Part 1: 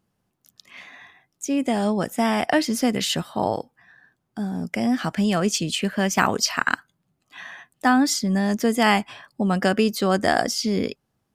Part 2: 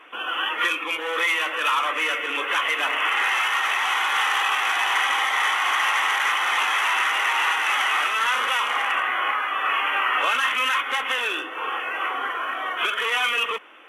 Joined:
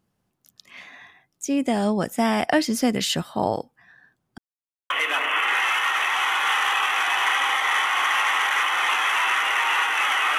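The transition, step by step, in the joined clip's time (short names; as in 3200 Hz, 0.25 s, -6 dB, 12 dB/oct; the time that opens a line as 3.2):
part 1
4.38–4.9 mute
4.9 switch to part 2 from 2.59 s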